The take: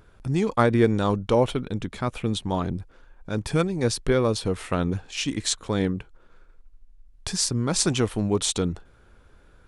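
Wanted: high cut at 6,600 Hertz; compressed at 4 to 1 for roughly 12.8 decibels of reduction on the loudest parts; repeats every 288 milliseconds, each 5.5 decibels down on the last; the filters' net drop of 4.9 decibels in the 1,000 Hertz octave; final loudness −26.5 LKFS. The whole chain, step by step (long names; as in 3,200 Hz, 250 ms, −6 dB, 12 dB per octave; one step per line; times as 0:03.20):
low-pass filter 6,600 Hz
parametric band 1,000 Hz −6.5 dB
downward compressor 4 to 1, threshold −31 dBFS
repeating echo 288 ms, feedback 53%, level −5.5 dB
level +7.5 dB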